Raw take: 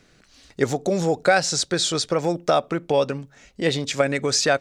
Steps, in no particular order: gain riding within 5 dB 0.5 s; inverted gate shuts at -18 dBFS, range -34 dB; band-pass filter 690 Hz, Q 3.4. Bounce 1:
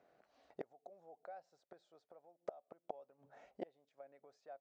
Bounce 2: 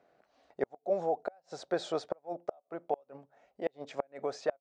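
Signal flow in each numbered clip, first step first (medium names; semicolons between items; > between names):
inverted gate > band-pass filter > gain riding; band-pass filter > gain riding > inverted gate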